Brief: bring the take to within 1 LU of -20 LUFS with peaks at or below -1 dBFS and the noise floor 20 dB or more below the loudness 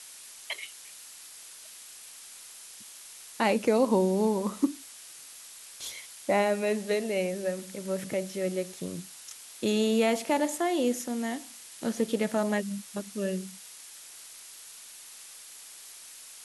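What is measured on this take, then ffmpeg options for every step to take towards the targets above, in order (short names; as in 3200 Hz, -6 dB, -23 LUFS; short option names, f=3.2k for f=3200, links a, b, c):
noise floor -48 dBFS; noise floor target -50 dBFS; loudness -29.5 LUFS; peak -12.5 dBFS; loudness target -20.0 LUFS
-> -af "afftdn=nr=6:nf=-48"
-af "volume=9.5dB"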